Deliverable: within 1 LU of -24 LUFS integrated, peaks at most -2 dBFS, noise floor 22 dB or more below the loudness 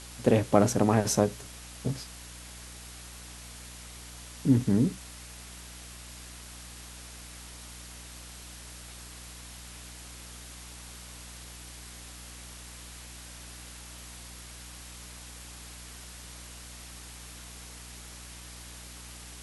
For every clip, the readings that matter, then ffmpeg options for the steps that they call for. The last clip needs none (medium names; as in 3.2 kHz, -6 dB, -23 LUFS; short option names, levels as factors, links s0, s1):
hum 60 Hz; highest harmonic 300 Hz; hum level -46 dBFS; noise floor -46 dBFS; noise floor target -57 dBFS; loudness -34.5 LUFS; peak level -5.5 dBFS; loudness target -24.0 LUFS
-> -af "bandreject=f=60:t=h:w=4,bandreject=f=120:t=h:w=4,bandreject=f=180:t=h:w=4,bandreject=f=240:t=h:w=4,bandreject=f=300:t=h:w=4"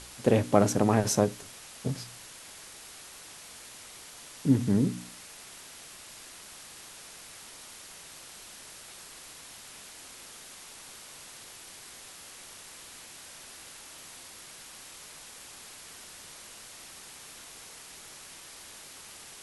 hum not found; noise floor -48 dBFS; noise floor target -55 dBFS
-> -af "afftdn=nr=7:nf=-48"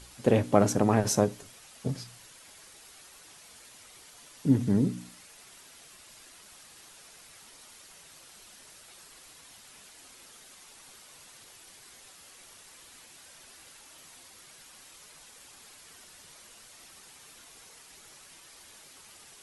noise floor -53 dBFS; loudness -27.0 LUFS; peak level -5.5 dBFS; loudness target -24.0 LUFS
-> -af "volume=1.41"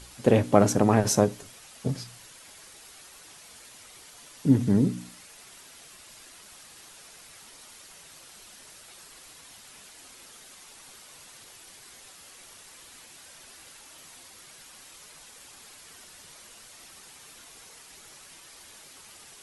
loudness -24.0 LUFS; peak level -2.5 dBFS; noise floor -50 dBFS